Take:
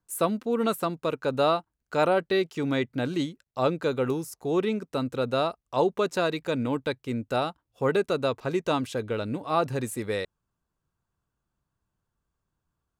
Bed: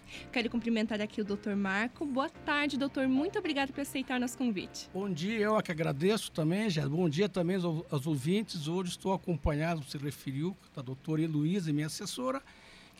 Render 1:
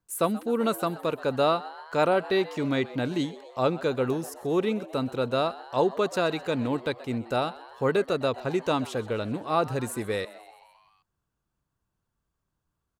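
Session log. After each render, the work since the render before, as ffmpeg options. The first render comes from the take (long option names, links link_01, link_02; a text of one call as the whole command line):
ffmpeg -i in.wav -filter_complex "[0:a]asplit=7[link_01][link_02][link_03][link_04][link_05][link_06][link_07];[link_02]adelay=129,afreqshift=110,volume=-18.5dB[link_08];[link_03]adelay=258,afreqshift=220,volume=-22.2dB[link_09];[link_04]adelay=387,afreqshift=330,volume=-26dB[link_10];[link_05]adelay=516,afreqshift=440,volume=-29.7dB[link_11];[link_06]adelay=645,afreqshift=550,volume=-33.5dB[link_12];[link_07]adelay=774,afreqshift=660,volume=-37.2dB[link_13];[link_01][link_08][link_09][link_10][link_11][link_12][link_13]amix=inputs=7:normalize=0" out.wav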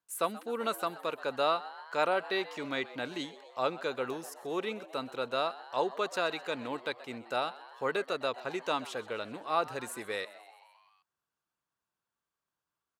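ffmpeg -i in.wav -af "highpass=frequency=1100:poles=1,highshelf=frequency=5100:gain=-6.5" out.wav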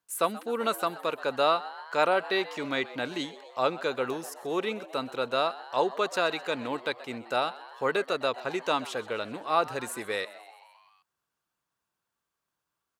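ffmpeg -i in.wav -af "volume=4.5dB" out.wav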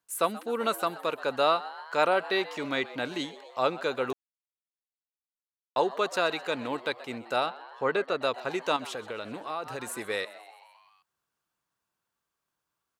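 ffmpeg -i in.wav -filter_complex "[0:a]asettb=1/sr,asplit=3[link_01][link_02][link_03];[link_01]atrim=end=7.464[link_04];[link_02]atrim=start=7.46:end=8.22,asetpts=PTS-STARTPTS,afade=type=in:duration=0.004:curve=qsin,afade=type=out:start_time=0.756:duration=0.004:curve=qsin,aemphasis=mode=reproduction:type=50fm[link_05];[link_03]atrim=start=8.216[link_06];[link_04][link_05]acrossfade=duration=0.004:curve1=hsin:curve2=qsin[link_07];[link_07][link_06]acrossfade=duration=0.004:curve1=qsin:curve2=hsin,asettb=1/sr,asplit=3[link_08][link_09][link_10];[link_08]atrim=end=8.764[link_11];[link_09]atrim=start=8.76:end=9.9,asetpts=PTS-STARTPTS,afade=type=in:duration=0.004:curve=qsin,afade=type=out:start_time=1.136:duration=0.004:curve=qsin,acompressor=threshold=-32dB:ratio=3:attack=3.2:release=140:knee=1:detection=peak[link_12];[link_10]atrim=start=9.896[link_13];[link_11][link_12]acrossfade=duration=0.004:curve1=hsin:curve2=qsin[link_14];[link_14][link_13]acrossfade=duration=0.004:curve1=qsin:curve2=hsin,asplit=3[link_15][link_16][link_17];[link_15]atrim=end=4.13,asetpts=PTS-STARTPTS,afade=type=out:start_time=4.126:duration=0.004:curve=hsin[link_18];[link_16]atrim=start=4.13:end=5.76,asetpts=PTS-STARTPTS,volume=0[link_19];[link_17]atrim=start=5.76,asetpts=PTS-STARTPTS,afade=type=in:duration=0.004:curve=hsin[link_20];[link_18][link_19][link_20]concat=n=3:v=0:a=1" out.wav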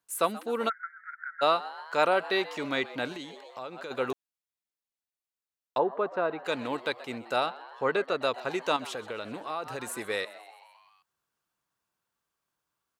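ffmpeg -i in.wav -filter_complex "[0:a]asplit=3[link_01][link_02][link_03];[link_01]afade=type=out:start_time=0.68:duration=0.02[link_04];[link_02]asuperpass=centerf=1700:order=20:qfactor=2,afade=type=in:start_time=0.68:duration=0.02,afade=type=out:start_time=1.41:duration=0.02[link_05];[link_03]afade=type=in:start_time=1.41:duration=0.02[link_06];[link_04][link_05][link_06]amix=inputs=3:normalize=0,asplit=3[link_07][link_08][link_09];[link_07]afade=type=out:start_time=3.12:duration=0.02[link_10];[link_08]acompressor=threshold=-37dB:ratio=4:attack=3.2:release=140:knee=1:detection=peak,afade=type=in:start_time=3.12:duration=0.02,afade=type=out:start_time=3.9:duration=0.02[link_11];[link_09]afade=type=in:start_time=3.9:duration=0.02[link_12];[link_10][link_11][link_12]amix=inputs=3:normalize=0,asplit=3[link_13][link_14][link_15];[link_13]afade=type=out:start_time=5.77:duration=0.02[link_16];[link_14]lowpass=1200,afade=type=in:start_time=5.77:duration=0.02,afade=type=out:start_time=6.44:duration=0.02[link_17];[link_15]afade=type=in:start_time=6.44:duration=0.02[link_18];[link_16][link_17][link_18]amix=inputs=3:normalize=0" out.wav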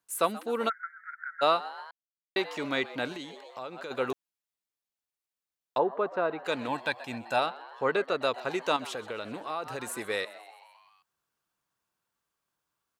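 ffmpeg -i in.wav -filter_complex "[0:a]asettb=1/sr,asplit=3[link_01][link_02][link_03];[link_01]atrim=end=6.684[link_04];[link_02]atrim=start=6.68:end=7.39,asetpts=PTS-STARTPTS,afade=type=in:duration=0.004:curve=qsin,afade=type=out:start_time=0.706:duration=0.004:curve=qsin,aecho=1:1:1.2:0.63,atrim=end_sample=31311[link_05];[link_03]atrim=start=7.386[link_06];[link_04][link_05]acrossfade=duration=0.004:curve1=hsin:curve2=qsin[link_07];[link_07][link_06]acrossfade=duration=0.004:curve1=qsin:curve2=hsin,asplit=3[link_08][link_09][link_10];[link_08]atrim=end=1.91,asetpts=PTS-STARTPTS,afade=type=out:start_time=1.906:duration=0.004:curve=hsin[link_11];[link_09]atrim=start=1.91:end=2.36,asetpts=PTS-STARTPTS,volume=0[link_12];[link_10]atrim=start=2.36,asetpts=PTS-STARTPTS,afade=type=in:duration=0.004:curve=hsin[link_13];[link_11][link_12][link_13]concat=n=3:v=0:a=1" out.wav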